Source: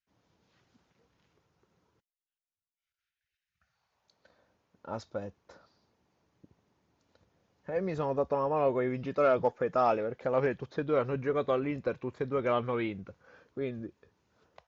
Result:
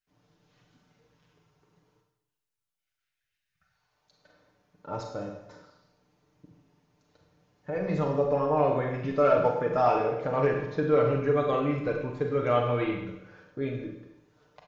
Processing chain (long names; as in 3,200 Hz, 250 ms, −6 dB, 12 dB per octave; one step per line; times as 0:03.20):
low-shelf EQ 110 Hz +6 dB
comb filter 6.7 ms
four-comb reverb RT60 0.86 s, combs from 33 ms, DRR 1.5 dB